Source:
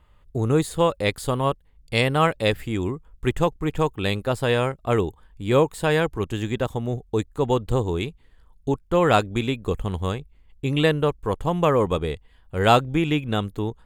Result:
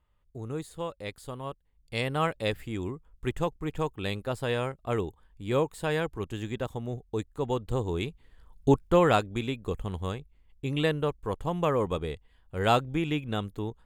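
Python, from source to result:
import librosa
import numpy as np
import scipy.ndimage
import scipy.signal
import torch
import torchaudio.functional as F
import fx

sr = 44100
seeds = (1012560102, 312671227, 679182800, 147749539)

y = fx.gain(x, sr, db=fx.line((1.46, -15.0), (2.18, -8.0), (7.67, -8.0), (8.78, 3.0), (9.21, -7.0)))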